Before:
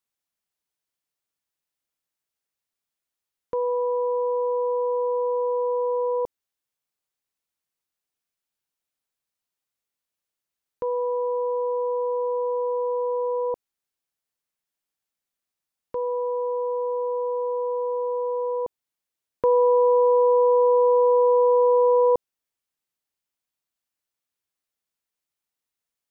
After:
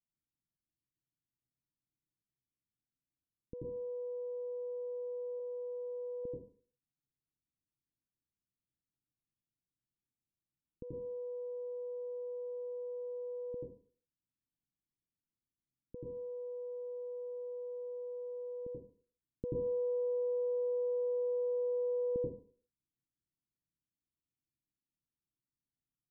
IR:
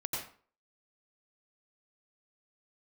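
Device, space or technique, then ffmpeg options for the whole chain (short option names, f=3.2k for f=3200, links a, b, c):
next room: -filter_complex "[0:a]lowpass=f=280:w=0.5412,lowpass=f=280:w=1.3066[a];[1:a]atrim=start_sample=2205[b];[a][b]afir=irnorm=-1:irlink=0,asettb=1/sr,asplit=3[c][d][e];[c]atrim=end=5.394[f];[d]atrim=start=5.39:end=6.24,asetpts=PTS-STARTPTS,afade=t=in:d=0.004:c=qsin,afade=t=out:st=0.846:d=0.004:c=qsin,bandreject=f=540:w=12[g];[e]atrim=start=6.236[h];[f][g]acrossfade=d=0.004:c1=hsin:c2=qsin[i];[i][h]acrossfade=d=0.004:c1=qsin:c2=hsin,volume=1dB"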